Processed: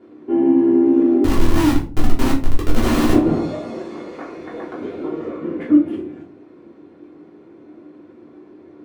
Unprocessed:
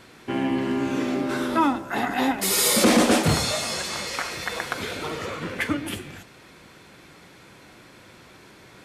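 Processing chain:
resonant band-pass 340 Hz, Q 2.2
0:01.24–0:03.13: comparator with hysteresis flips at −26 dBFS
rectangular room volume 230 cubic metres, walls furnished, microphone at 3.2 metres
level +3.5 dB

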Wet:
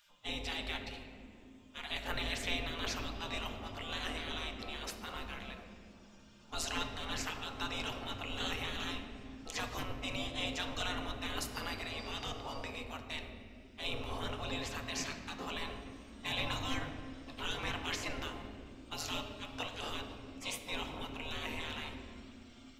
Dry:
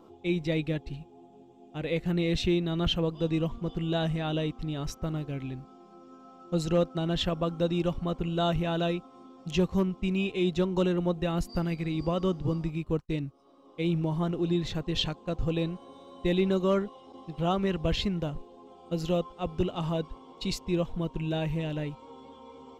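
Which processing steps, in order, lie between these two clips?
gate on every frequency bin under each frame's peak −25 dB weak
on a send: low-shelf EQ 430 Hz +11.5 dB + convolution reverb, pre-delay 4 ms, DRR 4.5 dB
on the sum: level +6 dB

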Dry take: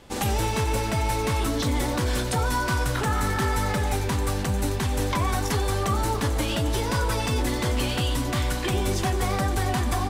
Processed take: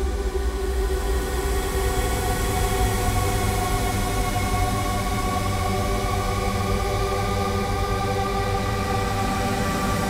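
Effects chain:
extreme stretch with random phases 44×, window 0.10 s, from 0:09.17
feedback delay with all-pass diffusion 1,038 ms, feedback 52%, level −5.5 dB

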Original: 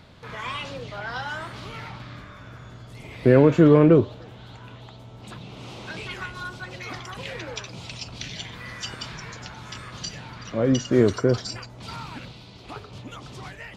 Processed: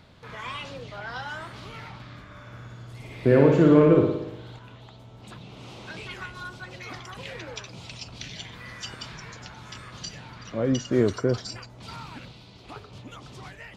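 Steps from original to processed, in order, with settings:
0:02.25–0:04.59: flutter between parallel walls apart 9.9 metres, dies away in 0.85 s
level −3.5 dB

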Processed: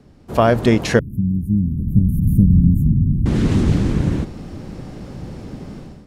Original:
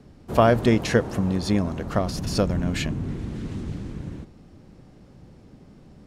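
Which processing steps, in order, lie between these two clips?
0:00.99–0:03.26: inverse Chebyshev band-stop filter 810–4,800 Hz, stop band 70 dB
automatic gain control gain up to 15.5 dB
level +1 dB

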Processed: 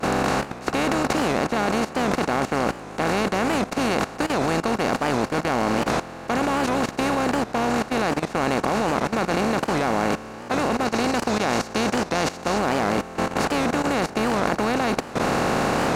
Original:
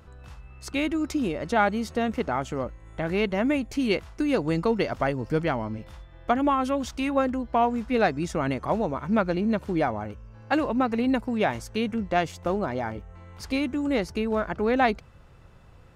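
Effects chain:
compressor on every frequency bin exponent 0.2
speech leveller 0.5 s
downward expander −7 dBFS
0:10.85–0:12.58: parametric band 5,500 Hz +5.5 dB 1.2 octaves
output level in coarse steps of 15 dB
bass and treble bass +3 dB, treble +7 dB
wow of a warped record 78 rpm, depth 160 cents
level +7.5 dB

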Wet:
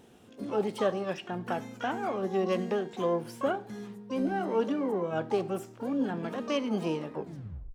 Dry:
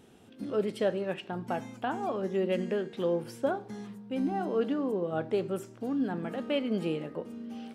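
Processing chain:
turntable brake at the end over 0.61 s
pitch-shifted copies added +12 semitones −10 dB

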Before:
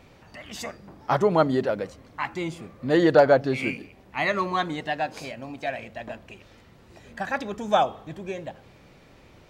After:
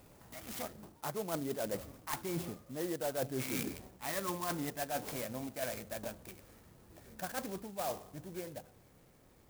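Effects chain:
source passing by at 0:03.28, 20 m/s, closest 23 metres
reversed playback
downward compressor 12 to 1, threshold −37 dBFS, peak gain reduction 25.5 dB
reversed playback
converter with an unsteady clock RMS 0.09 ms
level +3 dB

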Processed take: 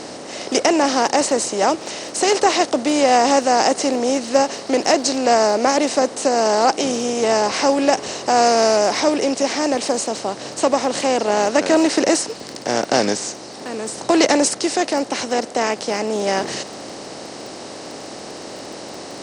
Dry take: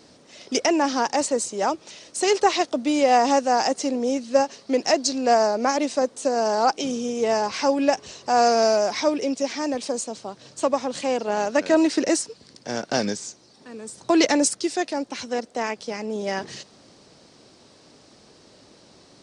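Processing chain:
compressor on every frequency bin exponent 0.6
surface crackle 14 per second −31 dBFS
level +1 dB

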